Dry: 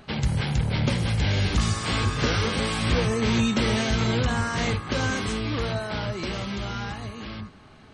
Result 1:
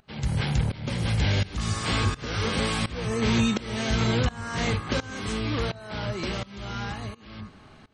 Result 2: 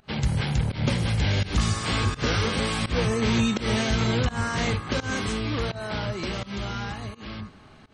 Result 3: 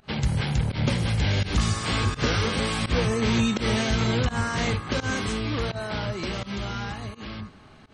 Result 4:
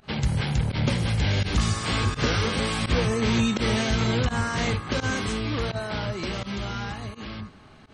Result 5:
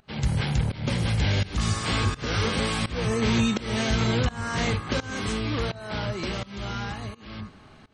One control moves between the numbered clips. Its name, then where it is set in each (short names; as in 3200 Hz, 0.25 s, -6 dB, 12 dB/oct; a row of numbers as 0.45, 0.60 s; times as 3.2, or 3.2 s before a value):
pump, release: 534, 176, 119, 78, 349 ms